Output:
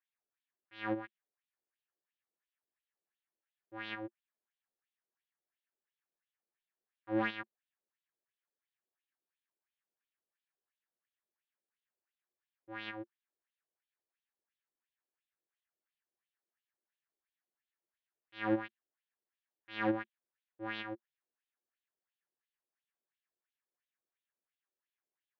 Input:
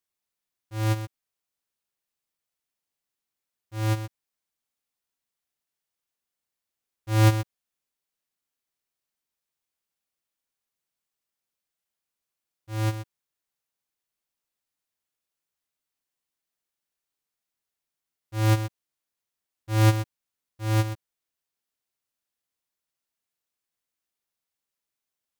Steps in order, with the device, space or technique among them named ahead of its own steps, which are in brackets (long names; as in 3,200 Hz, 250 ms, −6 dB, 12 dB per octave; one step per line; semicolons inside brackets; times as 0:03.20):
wah-wah guitar rig (LFO wah 2.9 Hz 460–3,700 Hz, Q 2.4; tube saturation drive 28 dB, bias 0.35; loudspeaker in its box 88–3,500 Hz, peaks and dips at 220 Hz +10 dB, 350 Hz +10 dB, 1,700 Hz +8 dB)
level +1 dB